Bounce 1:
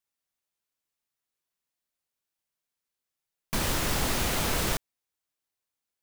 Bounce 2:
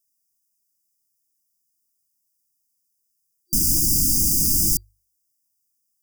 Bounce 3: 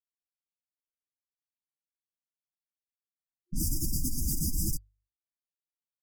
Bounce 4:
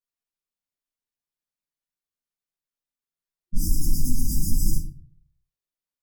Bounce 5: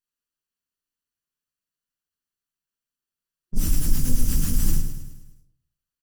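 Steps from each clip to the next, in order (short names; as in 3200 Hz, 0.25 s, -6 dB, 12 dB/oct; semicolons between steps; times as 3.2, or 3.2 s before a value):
notches 50/100 Hz; FFT band-reject 350–4700 Hz; high shelf 5400 Hz +11.5 dB; gain +5 dB
spectral contrast raised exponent 2; hard clip -9.5 dBFS, distortion -43 dB; low-pass opened by the level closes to 570 Hz, open at -17 dBFS; gain -8 dB
shoebox room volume 32 m³, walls mixed, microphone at 1.2 m; gain -5.5 dB
minimum comb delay 0.68 ms; on a send: feedback echo 0.105 s, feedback 54%, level -10 dB; on the sum: gain +2.5 dB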